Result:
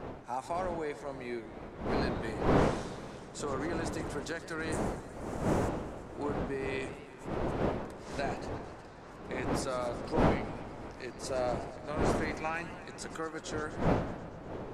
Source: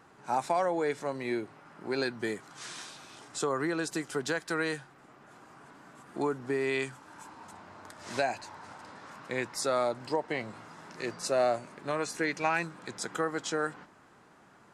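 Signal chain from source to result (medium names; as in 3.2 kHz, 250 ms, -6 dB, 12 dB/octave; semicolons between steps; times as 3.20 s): wind noise 560 Hz -29 dBFS; 4.72–5.69 s: resonant high shelf 5.4 kHz +12 dB, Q 1.5; modulated delay 122 ms, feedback 76%, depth 191 cents, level -15 dB; trim -7 dB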